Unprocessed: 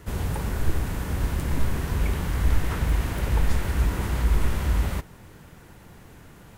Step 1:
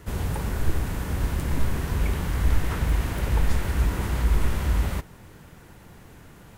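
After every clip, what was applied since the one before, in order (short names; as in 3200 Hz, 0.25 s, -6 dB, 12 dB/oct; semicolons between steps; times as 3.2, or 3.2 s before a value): nothing audible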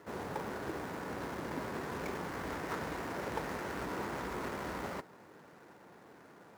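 median filter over 15 samples; HPF 320 Hz 12 dB/oct; gain -2 dB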